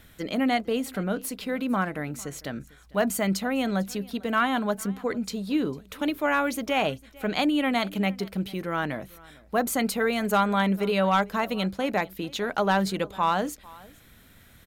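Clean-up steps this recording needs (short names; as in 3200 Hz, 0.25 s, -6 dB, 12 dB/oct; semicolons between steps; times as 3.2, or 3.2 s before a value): clip repair -14 dBFS; inverse comb 0.45 s -23 dB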